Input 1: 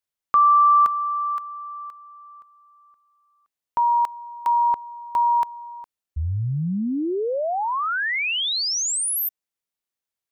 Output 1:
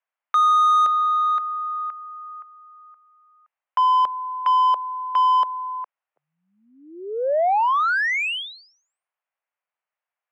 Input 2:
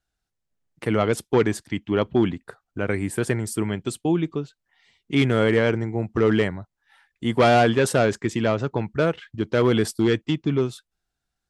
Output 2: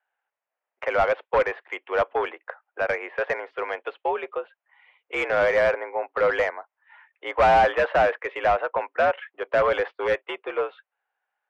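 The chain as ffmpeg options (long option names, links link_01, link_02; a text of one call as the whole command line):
ffmpeg -i in.wav -filter_complex "[0:a]highpass=frequency=500:width_type=q:width=0.5412,highpass=frequency=500:width_type=q:width=1.307,lowpass=frequency=2800:width_type=q:width=0.5176,lowpass=frequency=2800:width_type=q:width=0.7071,lowpass=frequency=2800:width_type=q:width=1.932,afreqshift=67,asplit=2[link_01][link_02];[link_02]highpass=frequency=720:poles=1,volume=18dB,asoftclip=type=tanh:threshold=-8.5dB[link_03];[link_01][link_03]amix=inputs=2:normalize=0,lowpass=frequency=1000:poles=1,volume=-6dB" out.wav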